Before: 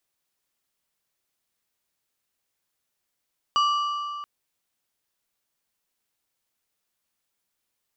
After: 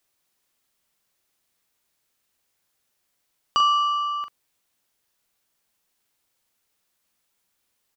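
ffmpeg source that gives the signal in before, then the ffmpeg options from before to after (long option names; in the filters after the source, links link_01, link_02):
-f lavfi -i "aevalsrc='0.133*pow(10,-3*t/2.57)*sin(2*PI*1170*t)+0.0531*pow(10,-3*t/1.952)*sin(2*PI*2925*t)+0.0211*pow(10,-3*t/1.696)*sin(2*PI*4680*t)+0.00841*pow(10,-3*t/1.586)*sin(2*PI*5850*t)+0.00335*pow(10,-3*t/1.466)*sin(2*PI*7605*t)':duration=0.68:sample_rate=44100"
-filter_complex "[0:a]asplit=2[link_01][link_02];[link_02]acompressor=threshold=-32dB:ratio=6,volume=-2dB[link_03];[link_01][link_03]amix=inputs=2:normalize=0,asplit=2[link_04][link_05];[link_05]adelay=42,volume=-8.5dB[link_06];[link_04][link_06]amix=inputs=2:normalize=0"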